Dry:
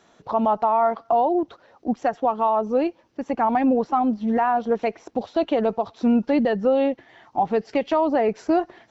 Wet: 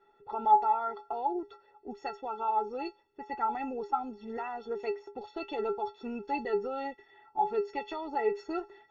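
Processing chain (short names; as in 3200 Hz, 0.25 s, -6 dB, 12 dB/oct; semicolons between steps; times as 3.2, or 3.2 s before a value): low-pass opened by the level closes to 2000 Hz, open at -17.5 dBFS; metallic resonator 400 Hz, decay 0.24 s, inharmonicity 0.03; gain +8 dB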